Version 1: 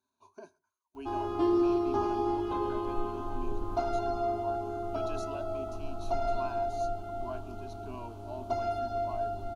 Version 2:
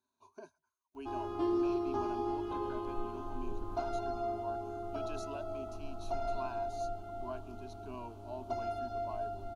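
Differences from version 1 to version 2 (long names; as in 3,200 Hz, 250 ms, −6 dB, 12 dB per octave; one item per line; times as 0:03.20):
background −5.5 dB
reverb: off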